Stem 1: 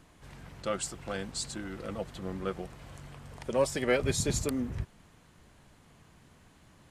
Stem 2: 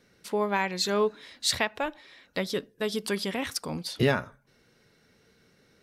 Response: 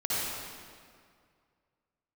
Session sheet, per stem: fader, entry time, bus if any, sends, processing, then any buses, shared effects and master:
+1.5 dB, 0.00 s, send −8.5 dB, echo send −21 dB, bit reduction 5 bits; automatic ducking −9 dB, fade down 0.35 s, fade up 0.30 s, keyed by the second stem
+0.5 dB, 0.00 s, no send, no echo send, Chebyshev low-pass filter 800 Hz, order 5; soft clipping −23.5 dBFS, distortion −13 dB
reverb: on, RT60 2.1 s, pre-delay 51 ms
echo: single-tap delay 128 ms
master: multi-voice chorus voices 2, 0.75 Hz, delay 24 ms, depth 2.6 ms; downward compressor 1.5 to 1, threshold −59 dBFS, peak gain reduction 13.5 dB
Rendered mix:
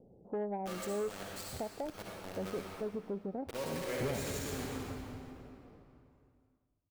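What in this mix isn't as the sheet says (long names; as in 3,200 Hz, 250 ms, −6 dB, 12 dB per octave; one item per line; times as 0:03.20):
stem 2 +0.5 dB → +6.5 dB
master: missing multi-voice chorus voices 2, 0.75 Hz, delay 24 ms, depth 2.6 ms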